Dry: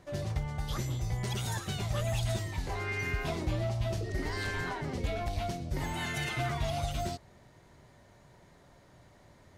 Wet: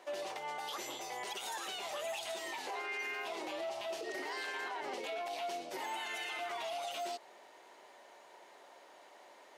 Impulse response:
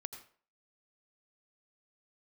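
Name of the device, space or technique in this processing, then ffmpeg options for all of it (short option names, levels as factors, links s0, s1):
laptop speaker: -af "highpass=f=370:w=0.5412,highpass=f=370:w=1.3066,equalizer=f=850:t=o:w=0.56:g=6,equalizer=f=2800:t=o:w=0.57:g=6,alimiter=level_in=3.16:limit=0.0631:level=0:latency=1:release=91,volume=0.316,volume=1.26"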